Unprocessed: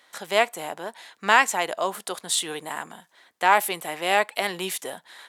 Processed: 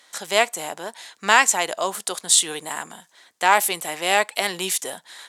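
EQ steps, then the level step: bell 7000 Hz +9.5 dB 1.6 oct; +1.0 dB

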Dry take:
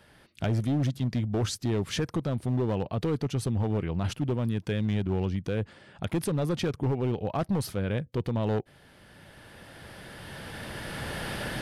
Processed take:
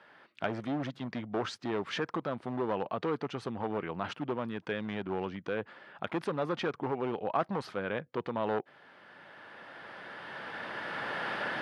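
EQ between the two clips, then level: BPF 240–3900 Hz; bell 1200 Hz +9.5 dB 1.8 oct; -4.5 dB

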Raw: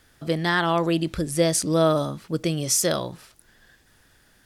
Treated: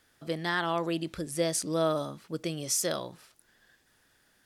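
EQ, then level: low shelf 120 Hz -11 dB; -7.0 dB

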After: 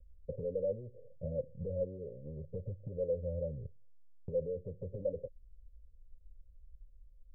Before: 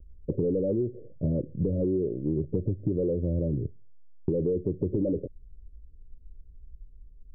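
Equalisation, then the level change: vocal tract filter e; low shelf 160 Hz +9.5 dB; fixed phaser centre 800 Hz, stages 4; +3.0 dB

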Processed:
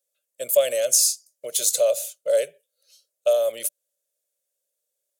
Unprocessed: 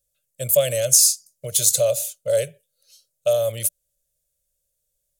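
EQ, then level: HPF 280 Hz 24 dB/oct; high shelf 4000 Hz -5 dB; 0.0 dB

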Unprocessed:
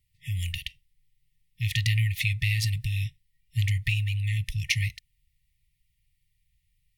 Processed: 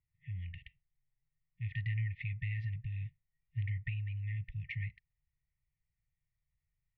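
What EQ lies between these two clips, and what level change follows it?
LPF 1700 Hz 24 dB/oct; low shelf 120 Hz -10.5 dB; -4.5 dB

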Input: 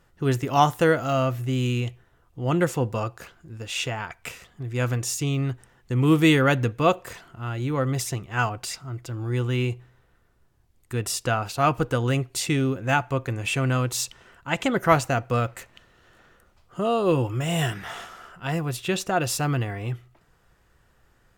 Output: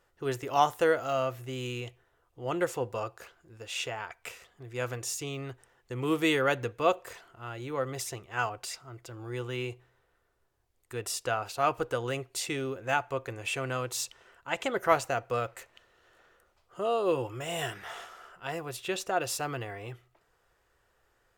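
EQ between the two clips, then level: bell 160 Hz -4.5 dB 0.31 oct; resonant low shelf 320 Hz -7 dB, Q 1.5; -6.0 dB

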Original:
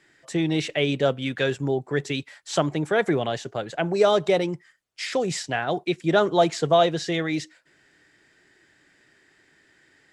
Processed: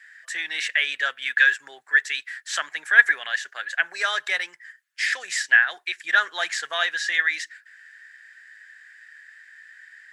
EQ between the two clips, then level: resonant high-pass 1700 Hz, resonance Q 8.6; high shelf 7700 Hz +7.5 dB; -1.0 dB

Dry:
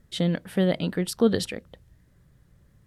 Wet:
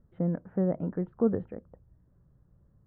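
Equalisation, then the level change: LPF 1300 Hz 24 dB/oct; air absorption 460 m; -4.0 dB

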